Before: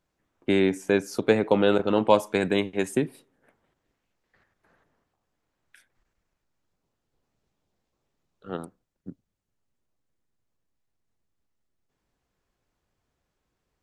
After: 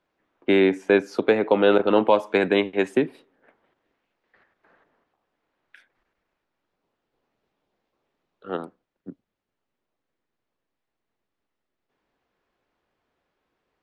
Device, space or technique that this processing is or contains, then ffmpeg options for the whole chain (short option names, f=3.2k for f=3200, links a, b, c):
DJ mixer with the lows and highs turned down: -filter_complex "[0:a]acrossover=split=230 4200:gain=0.224 1 0.1[a][b][c];[a][b][c]amix=inputs=3:normalize=0,alimiter=limit=-11.5dB:level=0:latency=1:release=240,volume=5.5dB"